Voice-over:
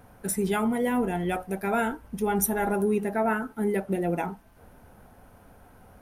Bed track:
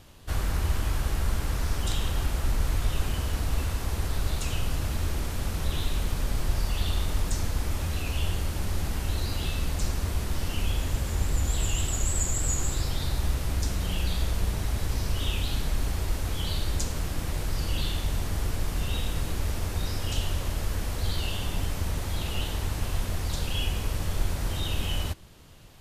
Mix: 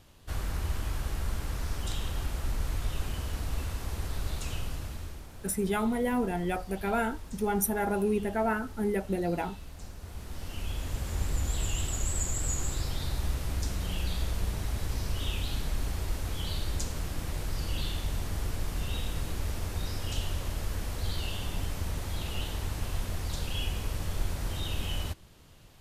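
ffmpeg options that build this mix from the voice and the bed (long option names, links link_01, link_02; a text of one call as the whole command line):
ffmpeg -i stem1.wav -i stem2.wav -filter_complex "[0:a]adelay=5200,volume=-3dB[link_01];[1:a]volume=7dB,afade=type=out:start_time=4.53:duration=0.74:silence=0.281838,afade=type=in:start_time=9.98:duration=1.25:silence=0.237137[link_02];[link_01][link_02]amix=inputs=2:normalize=0" out.wav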